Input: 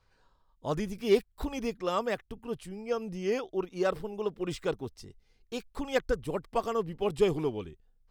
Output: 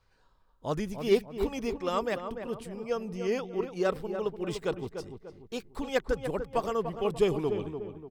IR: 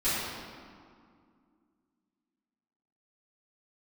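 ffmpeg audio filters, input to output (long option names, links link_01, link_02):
-filter_complex "[0:a]asplit=2[link_01][link_02];[link_02]adelay=294,lowpass=frequency=1500:poles=1,volume=-7.5dB,asplit=2[link_03][link_04];[link_04]adelay=294,lowpass=frequency=1500:poles=1,volume=0.42,asplit=2[link_05][link_06];[link_06]adelay=294,lowpass=frequency=1500:poles=1,volume=0.42,asplit=2[link_07][link_08];[link_08]adelay=294,lowpass=frequency=1500:poles=1,volume=0.42,asplit=2[link_09][link_10];[link_10]adelay=294,lowpass=frequency=1500:poles=1,volume=0.42[link_11];[link_01][link_03][link_05][link_07][link_09][link_11]amix=inputs=6:normalize=0"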